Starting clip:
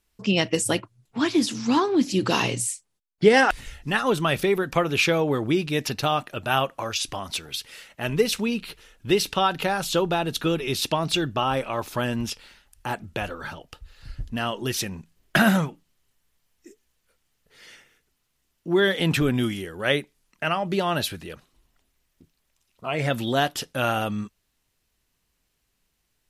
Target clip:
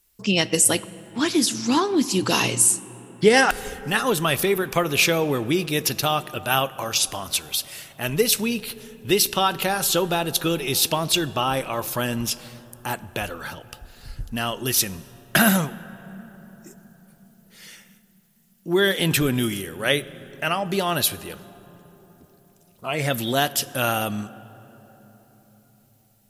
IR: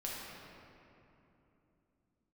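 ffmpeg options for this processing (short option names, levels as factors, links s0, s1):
-filter_complex "[0:a]aemphasis=mode=production:type=50fm,asplit=2[s0][s1];[1:a]atrim=start_sample=2205,asetrate=29106,aresample=44100[s2];[s1][s2]afir=irnorm=-1:irlink=0,volume=0.1[s3];[s0][s3]amix=inputs=2:normalize=0"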